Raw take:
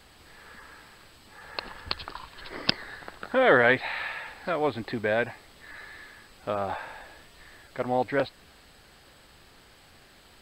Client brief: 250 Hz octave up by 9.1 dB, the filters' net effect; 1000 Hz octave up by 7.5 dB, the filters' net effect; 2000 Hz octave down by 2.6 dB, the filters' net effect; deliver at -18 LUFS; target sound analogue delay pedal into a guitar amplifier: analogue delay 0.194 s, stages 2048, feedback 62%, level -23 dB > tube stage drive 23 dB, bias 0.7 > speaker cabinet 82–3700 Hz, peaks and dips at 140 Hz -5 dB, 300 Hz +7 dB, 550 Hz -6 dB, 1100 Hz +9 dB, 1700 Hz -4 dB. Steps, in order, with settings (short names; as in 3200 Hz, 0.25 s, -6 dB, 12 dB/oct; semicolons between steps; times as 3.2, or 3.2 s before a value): bell 250 Hz +6.5 dB; bell 1000 Hz +7.5 dB; bell 2000 Hz -4.5 dB; analogue delay 0.194 s, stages 2048, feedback 62%, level -23 dB; tube stage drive 23 dB, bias 0.7; speaker cabinet 82–3700 Hz, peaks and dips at 140 Hz -5 dB, 300 Hz +7 dB, 550 Hz -6 dB, 1100 Hz +9 dB, 1700 Hz -4 dB; gain +14.5 dB